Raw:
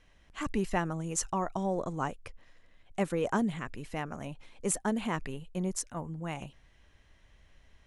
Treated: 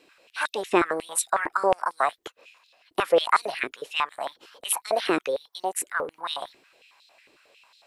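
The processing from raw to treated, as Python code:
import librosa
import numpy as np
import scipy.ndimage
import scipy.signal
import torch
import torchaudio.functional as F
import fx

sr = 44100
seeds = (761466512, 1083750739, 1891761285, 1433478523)

y = fx.formant_shift(x, sr, semitones=5)
y = fx.filter_held_highpass(y, sr, hz=11.0, low_hz=350.0, high_hz=3900.0)
y = y * librosa.db_to_amplitude(6.0)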